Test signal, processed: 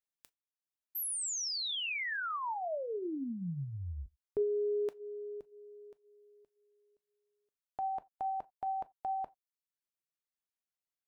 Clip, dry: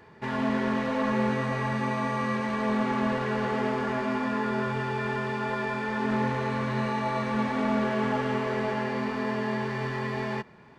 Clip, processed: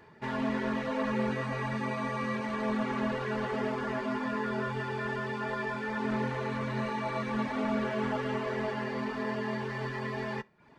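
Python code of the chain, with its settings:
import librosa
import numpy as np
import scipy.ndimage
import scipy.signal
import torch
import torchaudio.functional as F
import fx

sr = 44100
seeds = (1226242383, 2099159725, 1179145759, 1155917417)

y = fx.rev_gated(x, sr, seeds[0], gate_ms=110, shape='falling', drr_db=10.5)
y = fx.dereverb_blind(y, sr, rt60_s=0.55)
y = y * librosa.db_to_amplitude(-3.0)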